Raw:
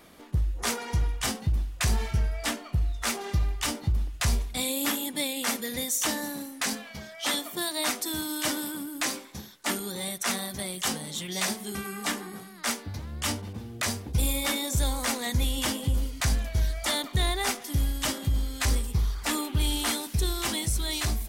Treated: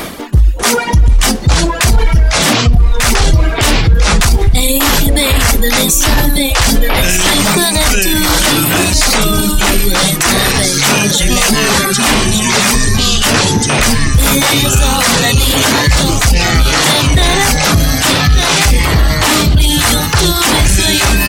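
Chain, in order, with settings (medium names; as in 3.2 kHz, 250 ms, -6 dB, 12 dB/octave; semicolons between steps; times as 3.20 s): delay 1193 ms -7 dB; reverb removal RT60 1.2 s; reverse; upward compressor, threshold -28 dBFS; reverse; ever faster or slower copies 594 ms, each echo -6 st, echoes 3; in parallel at -4 dB: hard clipper -21.5 dBFS, distortion -15 dB; on the sum: loudness maximiser +21.5 dB; trim -1 dB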